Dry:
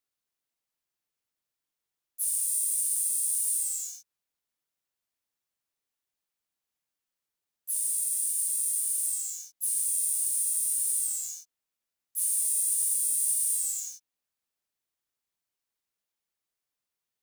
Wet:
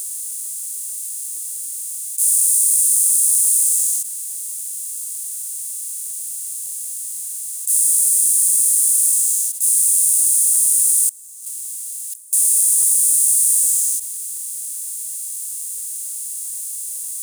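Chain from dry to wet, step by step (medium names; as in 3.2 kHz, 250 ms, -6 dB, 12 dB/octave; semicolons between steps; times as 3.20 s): spectral levelling over time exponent 0.2; treble shelf 3.2 kHz +8.5 dB; 11.09–12.33 s: compressor with a negative ratio -32 dBFS, ratio -1; trim -2 dB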